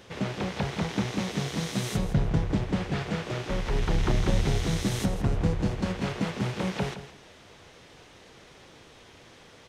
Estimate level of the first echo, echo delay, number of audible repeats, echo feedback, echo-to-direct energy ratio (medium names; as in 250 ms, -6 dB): -12.5 dB, 164 ms, 2, 19%, -12.5 dB